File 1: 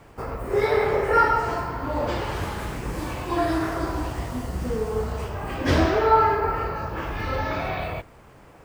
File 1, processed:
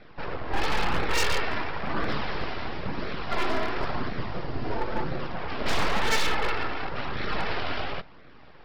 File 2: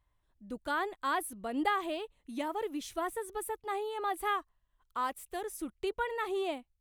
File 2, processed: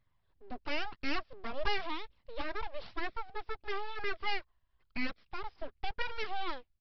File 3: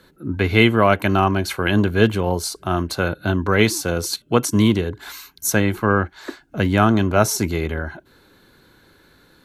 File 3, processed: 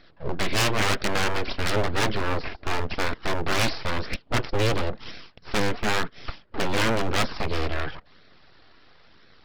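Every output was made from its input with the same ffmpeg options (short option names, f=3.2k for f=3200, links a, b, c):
-af "aresample=11025,aeval=exprs='abs(val(0))':c=same,aresample=44100,flanger=delay=0.5:depth=2.5:regen=-47:speed=0.97:shape=sinusoidal,aeval=exprs='0.0944*(abs(mod(val(0)/0.0944+3,4)-2)-1)':c=same,volume=4.5dB"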